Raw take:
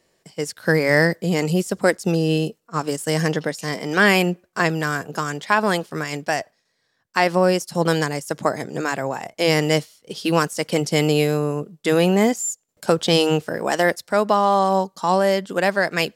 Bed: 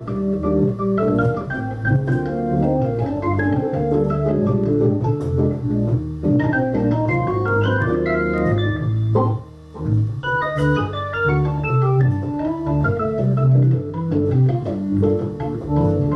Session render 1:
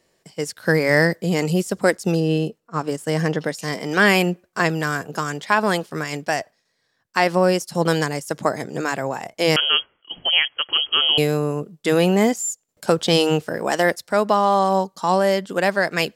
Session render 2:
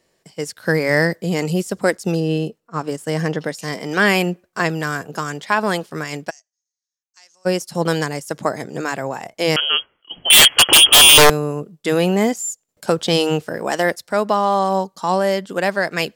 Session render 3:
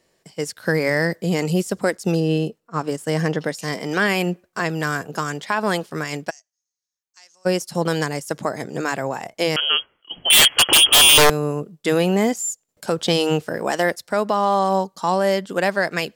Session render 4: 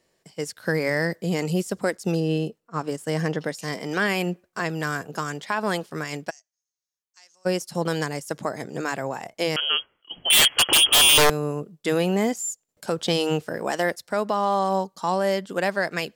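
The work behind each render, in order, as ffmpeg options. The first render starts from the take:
-filter_complex "[0:a]asettb=1/sr,asplit=3[a][b][c];[a]atrim=end=2.204[d];[b]atrim=start=2.2:end=3.4,asetpts=PTS-STARTPTS,afade=t=in:d=0.004:c=qsin,afade=t=out:st=1.196:d=0.004:c=qsin,highshelf=f=3.3k:g=-8[e];[c]atrim=start=3.396[f];[d][e]acrossfade=d=0.004:c1=hsin:c2=qsin[g];[g][f]acrossfade=d=0.004:c1=qsin:c2=hsin,asettb=1/sr,asplit=3[h][i][j];[h]atrim=end=9.564[k];[i]atrim=start=9.56:end=11.18,asetpts=PTS-STARTPTS,afade=t=in:d=0.004:c=qsin,afade=t=out:st=1.616:d=0.004:c=qsin,lowpass=f=2.9k:t=q:w=0.5098,lowpass=f=2.9k:t=q:w=0.6013,lowpass=f=2.9k:t=q:w=0.9,lowpass=f=2.9k:t=q:w=2.563,afreqshift=-3400[l];[j]atrim=start=11.176[m];[k][l]acrossfade=d=0.004:c1=hsin:c2=qsin[n];[n][m]acrossfade=d=0.004:c1=qsin:c2=hsin"
-filter_complex "[0:a]asplit=3[a][b][c];[a]afade=t=out:st=6.29:d=0.02[d];[b]bandpass=f=6.4k:t=q:w=13,afade=t=in:st=6.29:d=0.02,afade=t=out:st=7.45:d=0.02[e];[c]afade=t=in:st=7.45:d=0.02[f];[d][e][f]amix=inputs=3:normalize=0,asettb=1/sr,asplit=3[g][h][i];[g]atrim=end=10.304[j];[h]atrim=start=10.3:end=11.3,asetpts=PTS-STARTPTS,afade=t=in:d=0.004:c=qsin,afade=t=out:st=0.996:d=0.004:c=qsin,aeval=exprs='0.596*sin(PI/2*7.08*val(0)/0.596)':c=same[k];[i]atrim=start=11.296[l];[j][k]acrossfade=d=0.004:c1=hsin:c2=qsin[m];[m][l]acrossfade=d=0.004:c1=qsin:c2=hsin"
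-af "alimiter=limit=-8dB:level=0:latency=1:release=170"
-af "volume=-4dB"

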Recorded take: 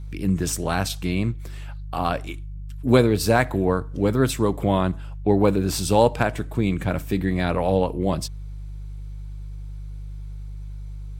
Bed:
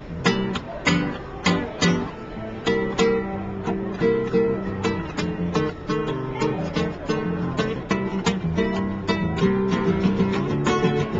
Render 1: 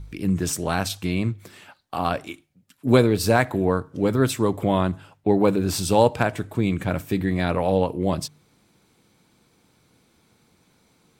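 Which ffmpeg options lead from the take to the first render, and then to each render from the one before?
-af "bandreject=f=50:t=h:w=4,bandreject=f=100:t=h:w=4,bandreject=f=150:t=h:w=4"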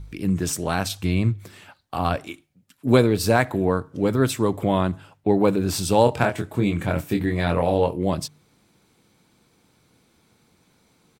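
-filter_complex "[0:a]asettb=1/sr,asplit=3[a][b][c];[a]atrim=end=0.994[d];[b]atrim=start=0.99:end=2.16,asetpts=PTS-STARTPTS,afade=t=in:d=0.004:c=qsin,afade=t=out:st=1.166:d=0.004:c=qsin,equalizer=f=80:w=1:g=7.5[e];[c]atrim=start=2.156[f];[d][e]acrossfade=d=0.004:c1=hsin:c2=qsin[g];[g][f]acrossfade=d=0.004:c1=qsin:c2=hsin,asplit=3[h][i][j];[h]afade=t=out:st=6.06:d=0.02[k];[i]asplit=2[l][m];[m]adelay=24,volume=-5dB[n];[l][n]amix=inputs=2:normalize=0,afade=t=in:st=6.06:d=0.02,afade=t=out:st=7.95:d=0.02[o];[j]afade=t=in:st=7.95:d=0.02[p];[k][o][p]amix=inputs=3:normalize=0"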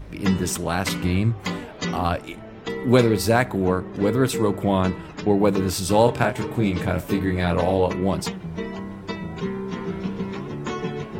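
-filter_complex "[1:a]volume=-8dB[a];[0:a][a]amix=inputs=2:normalize=0"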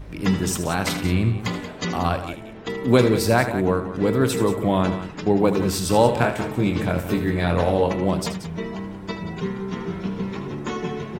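-af "aecho=1:1:78.72|180.8:0.282|0.251"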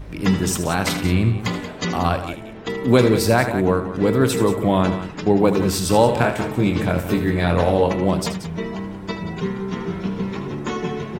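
-af "volume=2.5dB,alimiter=limit=-3dB:level=0:latency=1"

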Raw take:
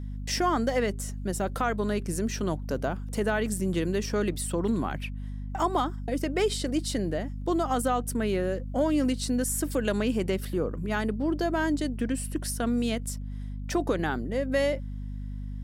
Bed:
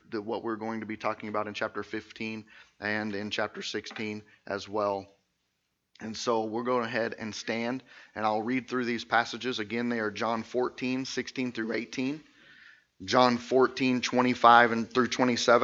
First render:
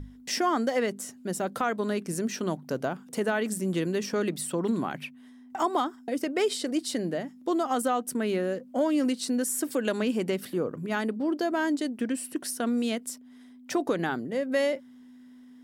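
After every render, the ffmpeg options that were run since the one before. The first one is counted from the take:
-af "bandreject=f=50:t=h:w=6,bandreject=f=100:t=h:w=6,bandreject=f=150:t=h:w=6,bandreject=f=200:t=h:w=6"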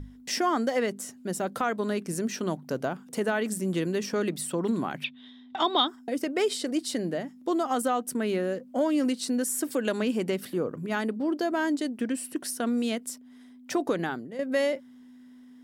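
-filter_complex "[0:a]asettb=1/sr,asplit=3[a][b][c];[a]atrim=end=5.044[d];[b]atrim=start=5.04:end=5.88,asetpts=PTS-STARTPTS,afade=t=in:d=0.004:c=qsin,afade=t=out:st=0.836:d=0.004:c=qsin,lowpass=f=3.6k:t=q:w=13[e];[c]atrim=start=5.876[f];[d][e]acrossfade=d=0.004:c1=hsin:c2=qsin[g];[g][f]acrossfade=d=0.004:c1=qsin:c2=hsin,asplit=2[h][i];[h]atrim=end=14.39,asetpts=PTS-STARTPTS,afade=t=out:st=13.96:d=0.43:silence=0.316228[j];[i]atrim=start=14.39,asetpts=PTS-STARTPTS,afade=t=in:d=0.004:c=hsin:silence=0.316228[k];[j][k]concat=n=2:v=0:a=1"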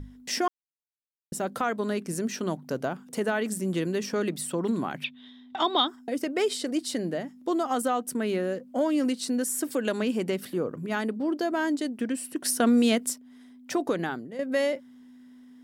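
-filter_complex "[0:a]asplit=3[a][b][c];[a]afade=t=out:st=12.44:d=0.02[d];[b]acontrast=70,afade=t=in:st=12.44:d=0.02,afade=t=out:st=13.12:d=0.02[e];[c]afade=t=in:st=13.12:d=0.02[f];[d][e][f]amix=inputs=3:normalize=0,asplit=3[g][h][i];[g]atrim=end=0.48,asetpts=PTS-STARTPTS,afade=t=out:st=0.476:d=0.004:c=hsin[j];[h]atrim=start=0.48:end=1.32,asetpts=PTS-STARTPTS,volume=0[k];[i]atrim=start=1.32,asetpts=PTS-STARTPTS,afade=t=in:d=0.004:c=hsin[l];[j][k][l]concat=n=3:v=0:a=1"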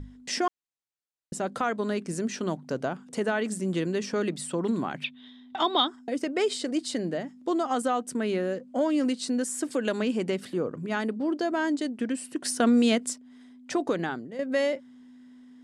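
-af "lowpass=f=9k:w=0.5412,lowpass=f=9k:w=1.3066,bandreject=f=5.6k:w=26"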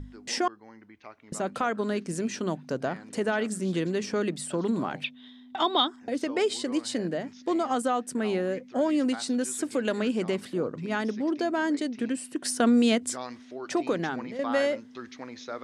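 -filter_complex "[1:a]volume=-16dB[a];[0:a][a]amix=inputs=2:normalize=0"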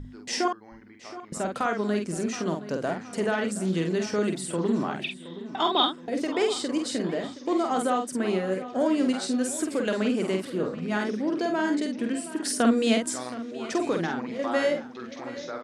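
-filter_complex "[0:a]asplit=2[a][b];[b]adelay=48,volume=-4.5dB[c];[a][c]amix=inputs=2:normalize=0,asplit=2[d][e];[e]adelay=721,lowpass=f=5k:p=1,volume=-15dB,asplit=2[f][g];[g]adelay=721,lowpass=f=5k:p=1,volume=0.46,asplit=2[h][i];[i]adelay=721,lowpass=f=5k:p=1,volume=0.46,asplit=2[j][k];[k]adelay=721,lowpass=f=5k:p=1,volume=0.46[l];[d][f][h][j][l]amix=inputs=5:normalize=0"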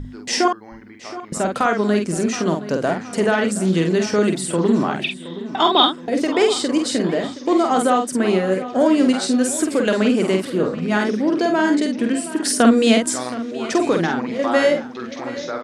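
-af "volume=8.5dB,alimiter=limit=-2dB:level=0:latency=1"

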